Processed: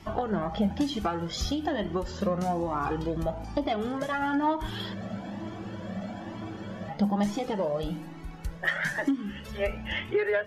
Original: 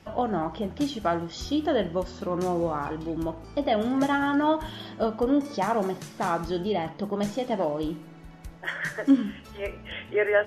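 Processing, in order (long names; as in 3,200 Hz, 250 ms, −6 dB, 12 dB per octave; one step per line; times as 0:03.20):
phase distortion by the signal itself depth 0.051 ms
downward compressor 16 to 1, threshold −28 dBFS, peak gain reduction 15 dB
hollow resonant body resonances 200/810/1,800 Hz, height 7 dB, ringing for 95 ms
frozen spectrum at 0:04.98, 1.90 s
flanger whose copies keep moving one way rising 1.1 Hz
level +8.5 dB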